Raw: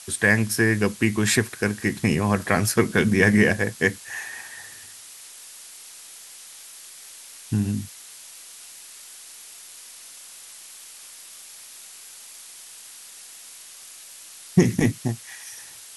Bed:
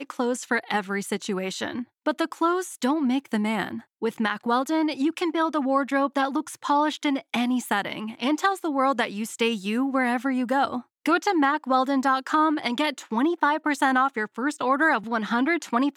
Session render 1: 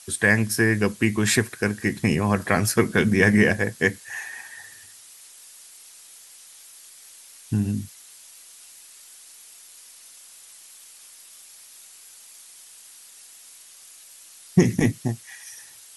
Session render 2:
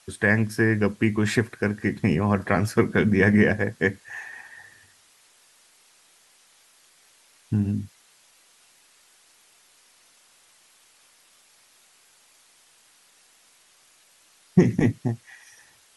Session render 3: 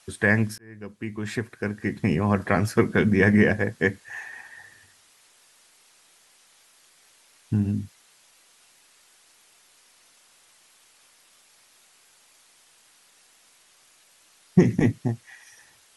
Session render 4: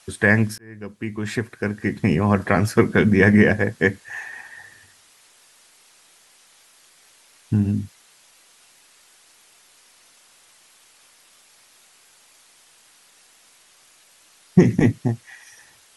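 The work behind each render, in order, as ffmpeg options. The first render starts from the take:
-af "afftdn=nr=6:nf=-44"
-af "lowpass=f=1.8k:p=1"
-filter_complex "[0:a]asplit=2[a][b];[a]atrim=end=0.58,asetpts=PTS-STARTPTS,afade=t=out:st=0.576:d=0.004:c=hsin[c];[b]atrim=start=0.58,asetpts=PTS-STARTPTS,afade=t=in:d=1.74[d];[c][d]concat=n=2:v=0:a=1"
-af "volume=4dB,alimiter=limit=-2dB:level=0:latency=1"

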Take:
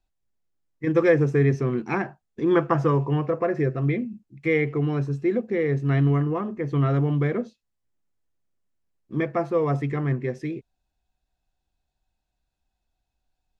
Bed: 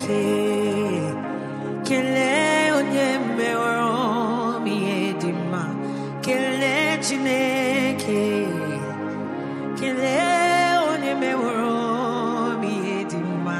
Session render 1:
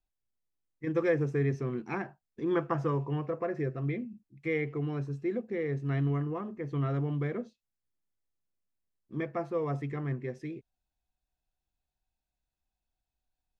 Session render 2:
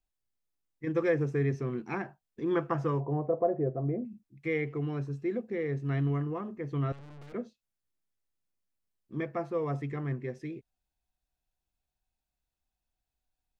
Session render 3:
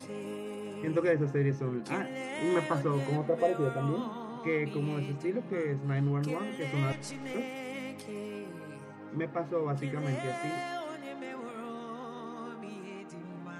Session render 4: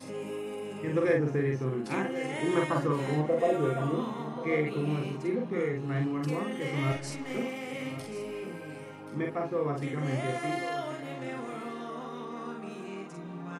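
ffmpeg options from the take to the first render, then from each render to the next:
-af "volume=-9dB"
-filter_complex "[0:a]asettb=1/sr,asplit=3[a][b][c];[a]atrim=end=3.004[d];[b]atrim=start=3:end=4.05,asetpts=PTS-STARTPTS,afade=t=in:d=0.004:c=qsin,afade=t=out:st=1.046:d=0.004:c=qsin,lowpass=f=690:t=q:w=2.8[e];[c]atrim=start=4.046[f];[d][e]acrossfade=d=0.004:c1=hsin:c2=qsin[g];[g][f]acrossfade=d=0.004:c1=qsin:c2=hsin,asettb=1/sr,asplit=3[h][i][j];[h]atrim=end=6.924[k];[i]atrim=start=6.92:end=7.34,asetpts=PTS-STARTPTS,afade=t=in:d=0.004:c=qsin,afade=t=out:st=0.416:d=0.004:c=qsin,aeval=exprs='(tanh(251*val(0)+0.75)-tanh(0.75))/251':c=same[l];[j]atrim=start=7.336[m];[k][l]acrossfade=d=0.004:c1=hsin:c2=qsin[n];[n][m]acrossfade=d=0.004:c1=qsin:c2=hsin"
-filter_complex "[1:a]volume=-18.5dB[a];[0:a][a]amix=inputs=2:normalize=0"
-filter_complex "[0:a]asplit=2[a][b];[b]adelay=46,volume=-2.5dB[c];[a][c]amix=inputs=2:normalize=0,aecho=1:1:1081:0.224"

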